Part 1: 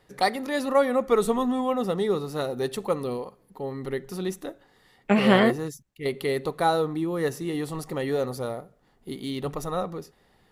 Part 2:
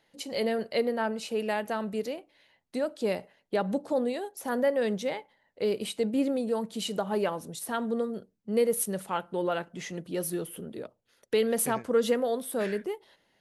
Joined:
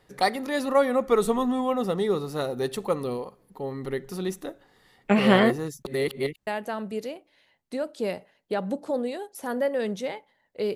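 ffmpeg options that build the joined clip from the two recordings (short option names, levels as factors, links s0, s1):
-filter_complex "[0:a]apad=whole_dur=10.75,atrim=end=10.75,asplit=2[s0][s1];[s0]atrim=end=5.852[s2];[s1]atrim=start=5.848:end=6.472,asetpts=PTS-STARTPTS,areverse[s3];[1:a]atrim=start=1.488:end=5.77[s4];[s2][s3]acrossfade=d=0.004:c1=hsin:c2=hsin[s5];[s5][s4]acrossfade=d=0.004:c1=hsin:c2=hsin"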